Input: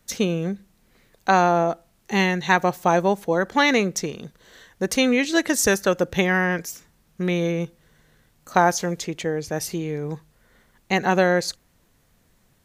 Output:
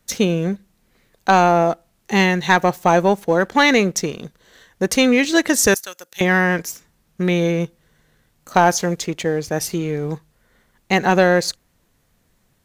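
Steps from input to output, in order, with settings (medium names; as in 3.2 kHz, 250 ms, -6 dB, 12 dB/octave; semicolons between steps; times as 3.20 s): 5.74–6.21 s: differentiator; waveshaping leveller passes 1; trim +1 dB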